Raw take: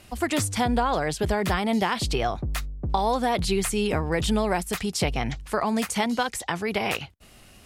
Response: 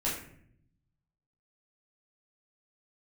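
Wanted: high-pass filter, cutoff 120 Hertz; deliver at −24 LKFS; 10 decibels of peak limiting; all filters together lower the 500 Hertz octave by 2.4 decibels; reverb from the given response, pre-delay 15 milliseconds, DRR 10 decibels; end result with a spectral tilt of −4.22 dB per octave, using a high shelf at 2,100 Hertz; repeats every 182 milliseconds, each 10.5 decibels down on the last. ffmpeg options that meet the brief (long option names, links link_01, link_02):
-filter_complex "[0:a]highpass=120,equalizer=frequency=500:width_type=o:gain=-3.5,highshelf=frequency=2100:gain=4.5,alimiter=limit=-17.5dB:level=0:latency=1,aecho=1:1:182|364|546:0.299|0.0896|0.0269,asplit=2[link_01][link_02];[1:a]atrim=start_sample=2205,adelay=15[link_03];[link_02][link_03]afir=irnorm=-1:irlink=0,volume=-16.5dB[link_04];[link_01][link_04]amix=inputs=2:normalize=0,volume=3.5dB"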